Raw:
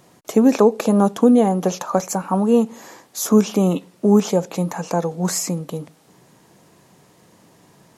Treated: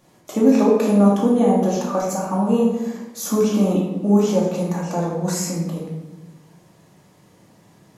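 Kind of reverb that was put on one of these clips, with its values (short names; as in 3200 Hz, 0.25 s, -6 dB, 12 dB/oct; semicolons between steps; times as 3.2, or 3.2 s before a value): shoebox room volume 460 m³, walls mixed, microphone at 2.4 m; gain -8 dB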